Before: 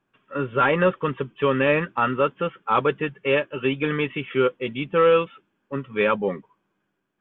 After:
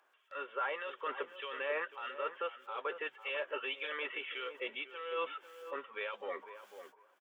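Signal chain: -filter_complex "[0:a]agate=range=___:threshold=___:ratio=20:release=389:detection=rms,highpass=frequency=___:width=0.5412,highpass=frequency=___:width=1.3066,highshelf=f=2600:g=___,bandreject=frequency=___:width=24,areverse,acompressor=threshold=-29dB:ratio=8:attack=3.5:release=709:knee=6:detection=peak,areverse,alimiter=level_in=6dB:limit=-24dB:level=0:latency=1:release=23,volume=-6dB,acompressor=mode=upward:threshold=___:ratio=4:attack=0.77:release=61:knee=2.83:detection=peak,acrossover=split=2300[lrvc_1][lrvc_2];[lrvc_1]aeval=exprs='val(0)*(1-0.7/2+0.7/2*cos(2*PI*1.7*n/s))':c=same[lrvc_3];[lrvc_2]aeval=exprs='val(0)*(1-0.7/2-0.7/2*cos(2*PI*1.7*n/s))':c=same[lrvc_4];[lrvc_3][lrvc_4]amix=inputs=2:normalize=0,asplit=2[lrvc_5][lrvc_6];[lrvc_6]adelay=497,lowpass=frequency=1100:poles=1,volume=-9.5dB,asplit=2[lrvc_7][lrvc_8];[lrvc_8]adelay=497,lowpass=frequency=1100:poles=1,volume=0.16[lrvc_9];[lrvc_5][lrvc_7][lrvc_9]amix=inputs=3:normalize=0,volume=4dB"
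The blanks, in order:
-55dB, -45dB, 520, 520, 6, 2500, -50dB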